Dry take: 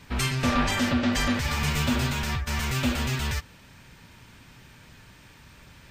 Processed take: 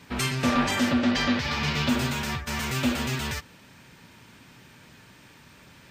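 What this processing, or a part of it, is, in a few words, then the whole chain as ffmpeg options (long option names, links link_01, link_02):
filter by subtraction: -filter_complex "[0:a]asplit=2[link_01][link_02];[link_02]lowpass=240,volume=-1[link_03];[link_01][link_03]amix=inputs=2:normalize=0,asettb=1/sr,asplit=3[link_04][link_05][link_06];[link_04]atrim=end=1.114[link_07];[link_05]atrim=start=1.11:end=1.89,asetpts=PTS-STARTPTS,afade=type=in:duration=0.004:curve=qsin,afade=type=out:start_time=0.776:duration=0.004:curve=qsin,highshelf=frequency=6600:width_type=q:width=1.5:gain=-12[link_08];[link_06]atrim=start=1.886[link_09];[link_07][link_08]acrossfade=duration=0.004:curve1=hsin:curve2=qsin[link_10];[link_10][link_09]acrossfade=duration=0.004:curve1=qsin:curve2=hsin"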